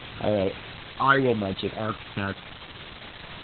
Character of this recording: phasing stages 8, 0.83 Hz, lowest notch 520–1800 Hz; a quantiser's noise floor 6-bit, dither triangular; Opus

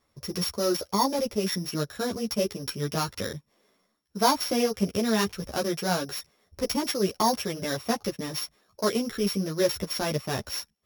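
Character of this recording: a buzz of ramps at a fixed pitch in blocks of 8 samples; a shimmering, thickened sound

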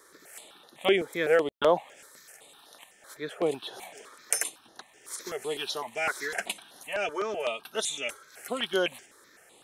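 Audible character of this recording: notches that jump at a steady rate 7.9 Hz 730–7900 Hz

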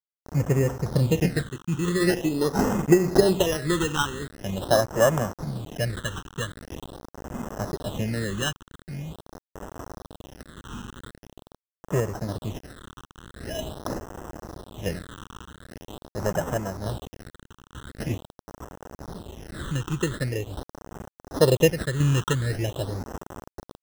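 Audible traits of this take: a quantiser's noise floor 6-bit, dither none; random-step tremolo; aliases and images of a low sample rate 2300 Hz, jitter 0%; phasing stages 8, 0.44 Hz, lowest notch 620–4000 Hz

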